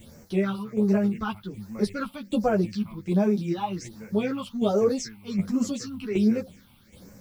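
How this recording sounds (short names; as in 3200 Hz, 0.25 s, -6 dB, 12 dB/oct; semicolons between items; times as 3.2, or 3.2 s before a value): a quantiser's noise floor 10-bit, dither triangular; phasing stages 6, 1.3 Hz, lowest notch 460–3400 Hz; tremolo saw down 1.3 Hz, depth 60%; a shimmering, thickened sound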